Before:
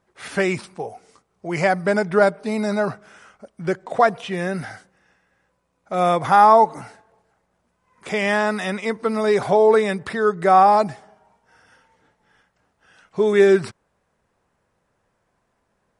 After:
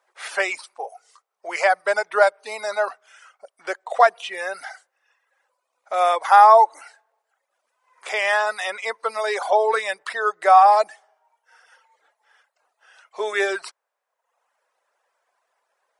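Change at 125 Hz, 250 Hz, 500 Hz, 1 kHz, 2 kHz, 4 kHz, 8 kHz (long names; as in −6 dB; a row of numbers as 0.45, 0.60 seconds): below −35 dB, below −15 dB, −4.0 dB, +1.5 dB, +2.0 dB, +1.5 dB, +1.5 dB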